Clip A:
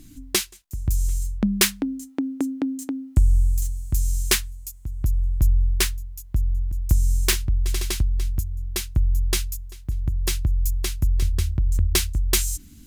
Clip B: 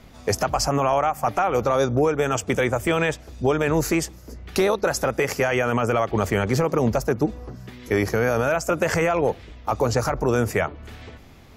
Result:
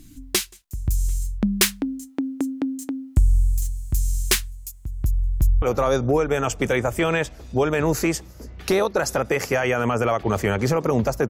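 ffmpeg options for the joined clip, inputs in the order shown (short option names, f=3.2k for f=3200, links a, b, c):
-filter_complex "[0:a]apad=whole_dur=11.29,atrim=end=11.29,atrim=end=5.622[a];[1:a]atrim=start=1.498:end=7.17[b];[a][b]acrossfade=d=0.004:c1=hsin:c2=hsin,asplit=2[c][d];[d]afade=t=in:st=5:d=0.01,afade=t=out:st=5.62:d=0.01,aecho=0:1:360|720|1080|1440|1800|2160|2520|2880:0.149624|0.104736|0.0733155|0.0513209|0.0359246|0.0251472|0.0176031|0.0123221[e];[c][e]amix=inputs=2:normalize=0"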